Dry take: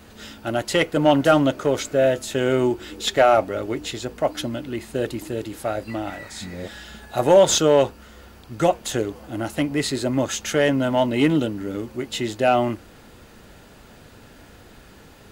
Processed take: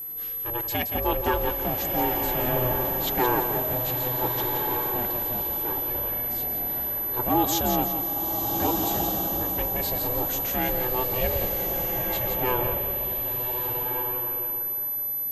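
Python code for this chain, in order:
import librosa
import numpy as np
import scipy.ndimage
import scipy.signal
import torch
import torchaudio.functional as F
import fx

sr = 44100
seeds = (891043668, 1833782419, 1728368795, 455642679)

p1 = x * np.sin(2.0 * np.pi * 250.0 * np.arange(len(x)) / sr)
p2 = p1 + 10.0 ** (-26.0 / 20.0) * np.sin(2.0 * np.pi * 12000.0 * np.arange(len(p1)) / sr)
p3 = p2 + fx.echo_feedback(p2, sr, ms=172, feedback_pct=38, wet_db=-8.0, dry=0)
p4 = fx.rev_bloom(p3, sr, seeds[0], attack_ms=1470, drr_db=2.5)
y = p4 * 10.0 ** (-6.5 / 20.0)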